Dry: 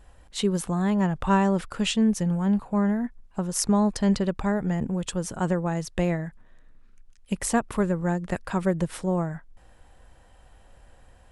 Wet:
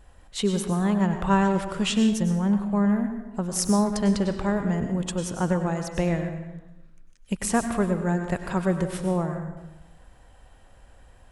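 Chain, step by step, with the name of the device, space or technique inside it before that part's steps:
saturated reverb return (on a send at −5.5 dB: convolution reverb RT60 0.95 s, pre-delay 91 ms + soft clipping −17.5 dBFS, distortion −18 dB)

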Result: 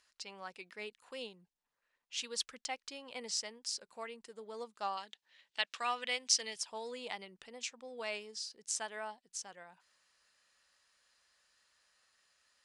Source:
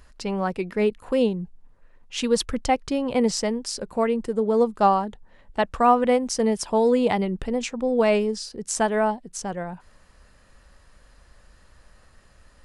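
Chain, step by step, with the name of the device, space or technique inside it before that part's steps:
piezo pickup straight into a mixer (low-pass filter 5,400 Hz 12 dB per octave; first difference)
0:04.97–0:06.56: meter weighting curve D
level −1.5 dB

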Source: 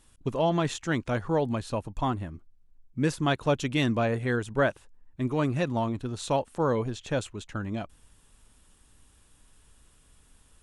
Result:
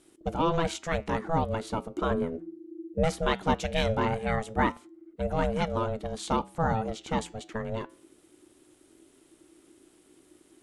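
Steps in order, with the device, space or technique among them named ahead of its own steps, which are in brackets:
0:02.11–0:03.04: low-shelf EQ 140 Hz +11.5 dB
alien voice (ring modulation 330 Hz; flanger 0.2 Hz, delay 6 ms, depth 2.9 ms, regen −88%)
level +6.5 dB

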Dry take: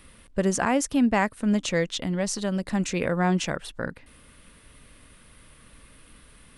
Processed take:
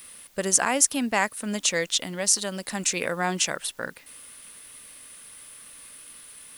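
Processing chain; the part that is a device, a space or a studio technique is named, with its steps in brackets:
turntable without a phono preamp (RIAA equalisation recording; white noise bed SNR 30 dB)

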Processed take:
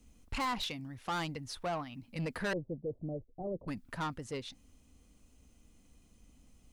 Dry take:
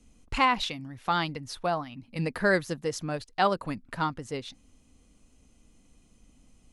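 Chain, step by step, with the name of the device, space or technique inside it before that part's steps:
open-reel tape (soft clipping −27 dBFS, distortion −7 dB; parametric band 68 Hz +4.5 dB; white noise bed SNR 43 dB)
0:02.53–0:03.68: Butterworth low-pass 620 Hz 36 dB per octave
level −3.5 dB

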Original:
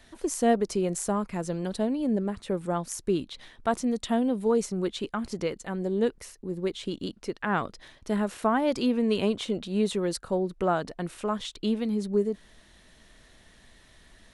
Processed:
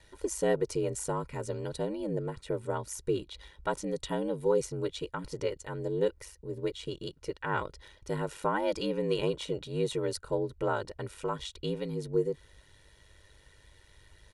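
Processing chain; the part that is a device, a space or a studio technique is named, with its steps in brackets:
ring-modulated robot voice (ring modulation 50 Hz; comb filter 2.1 ms, depth 66%)
level −2.5 dB

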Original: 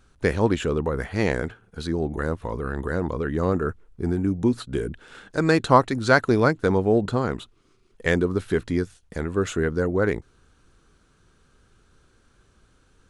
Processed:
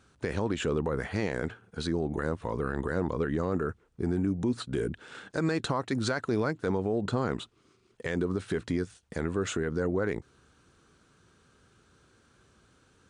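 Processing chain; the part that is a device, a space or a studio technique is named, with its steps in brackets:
podcast mastering chain (high-pass filter 85 Hz 12 dB per octave; downward compressor 2.5 to 1, threshold −22 dBFS, peak gain reduction 9 dB; brickwall limiter −18.5 dBFS, peak gain reduction 10 dB; MP3 96 kbit/s 22,050 Hz)

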